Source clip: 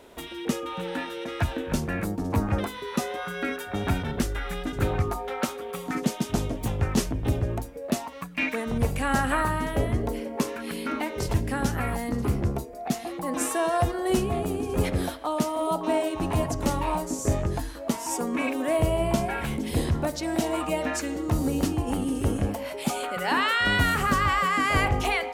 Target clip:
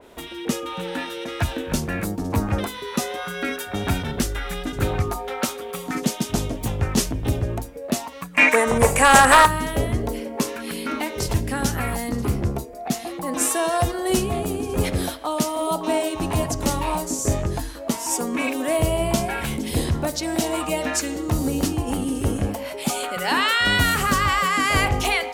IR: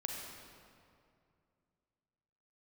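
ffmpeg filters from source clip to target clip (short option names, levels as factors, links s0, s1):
-filter_complex "[0:a]asplit=3[s0][s1][s2];[s0]afade=t=out:st=8.33:d=0.02[s3];[s1]equalizer=f=500:t=o:w=1:g=9,equalizer=f=1000:t=o:w=1:g=11,equalizer=f=2000:t=o:w=1:g=9,equalizer=f=4000:t=o:w=1:g=-5,equalizer=f=8000:t=o:w=1:g=12,afade=t=in:st=8.33:d=0.02,afade=t=out:st=9.45:d=0.02[s4];[s2]afade=t=in:st=9.45:d=0.02[s5];[s3][s4][s5]amix=inputs=3:normalize=0,volume=2.51,asoftclip=hard,volume=0.398,adynamicequalizer=threshold=0.01:dfrequency=2800:dqfactor=0.7:tfrequency=2800:tqfactor=0.7:attack=5:release=100:ratio=0.375:range=3.5:mode=boostabove:tftype=highshelf,volume=1.33"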